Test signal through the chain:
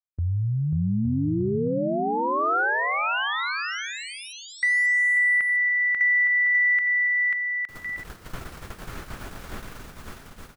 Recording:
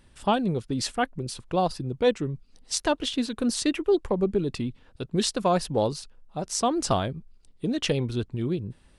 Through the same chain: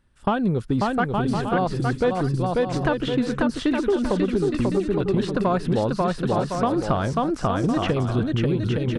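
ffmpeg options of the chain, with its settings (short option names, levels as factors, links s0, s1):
-filter_complex "[0:a]lowshelf=f=410:g=6.5,agate=range=0.158:threshold=0.0178:ratio=16:detection=peak,equalizer=f=1400:t=o:w=0.89:g=8,aecho=1:1:540|864|1058|1175|1245:0.631|0.398|0.251|0.158|0.1,acompressor=threshold=0.0891:ratio=6,aeval=exprs='0.266*(cos(1*acos(clip(val(0)/0.266,-1,1)))-cos(1*PI/2))+0.00841*(cos(3*acos(clip(val(0)/0.266,-1,1)))-cos(3*PI/2))+0.00335*(cos(7*acos(clip(val(0)/0.266,-1,1)))-cos(7*PI/2))':c=same,asoftclip=type=tanh:threshold=0.158,acrossover=split=3100[s0][s1];[s1]acompressor=threshold=0.00316:ratio=4:attack=1:release=60[s2];[s0][s2]amix=inputs=2:normalize=0,volume=1.78"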